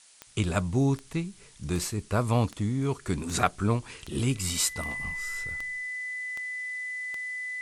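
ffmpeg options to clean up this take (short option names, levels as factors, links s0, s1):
-af "adeclick=t=4,bandreject=f=2000:w=30,afftdn=nr=21:nf=-52"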